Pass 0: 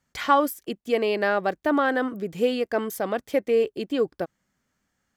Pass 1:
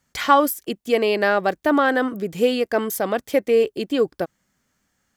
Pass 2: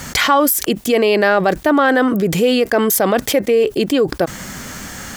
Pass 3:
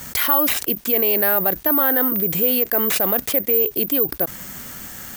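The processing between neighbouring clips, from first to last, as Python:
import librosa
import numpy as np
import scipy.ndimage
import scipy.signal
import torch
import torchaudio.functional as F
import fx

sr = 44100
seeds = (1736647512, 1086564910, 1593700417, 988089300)

y1 = fx.high_shelf(x, sr, hz=4600.0, db=5.0)
y1 = F.gain(torch.from_numpy(y1), 4.0).numpy()
y2 = fx.env_flatten(y1, sr, amount_pct=70)
y3 = (np.kron(y2[::3], np.eye(3)[0]) * 3)[:len(y2)]
y3 = F.gain(torch.from_numpy(y3), -9.0).numpy()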